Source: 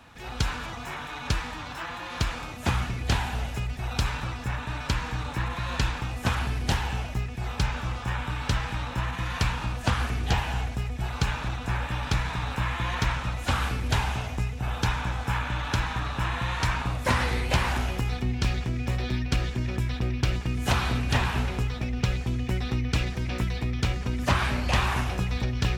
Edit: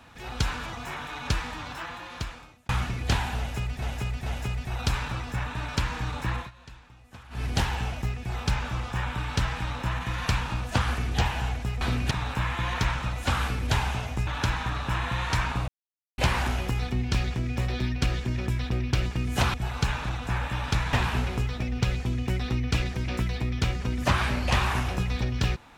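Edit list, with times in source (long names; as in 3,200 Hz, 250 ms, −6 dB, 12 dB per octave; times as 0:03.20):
0:01.69–0:02.69: fade out linear
0:03.38–0:03.82: repeat, 3 plays
0:05.49–0:06.56: duck −21 dB, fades 0.14 s
0:10.93–0:12.32: swap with 0:20.84–0:21.14
0:14.48–0:15.57: remove
0:16.98–0:17.48: silence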